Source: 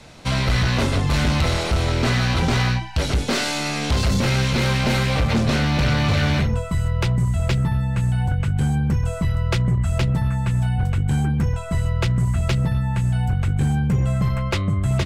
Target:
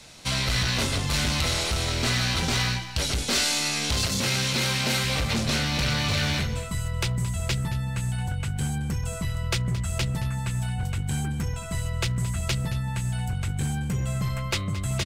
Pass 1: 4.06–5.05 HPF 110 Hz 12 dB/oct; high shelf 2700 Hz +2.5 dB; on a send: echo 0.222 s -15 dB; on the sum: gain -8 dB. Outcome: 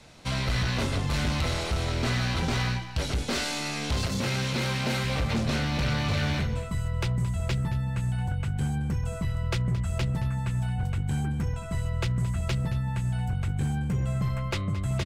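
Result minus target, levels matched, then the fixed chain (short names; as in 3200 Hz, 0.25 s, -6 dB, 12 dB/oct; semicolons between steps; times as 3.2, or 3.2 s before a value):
4000 Hz band -5.0 dB
4.06–5.05 HPF 110 Hz 12 dB/oct; high shelf 2700 Hz +14 dB; on a send: echo 0.222 s -15 dB; on the sum: gain -8 dB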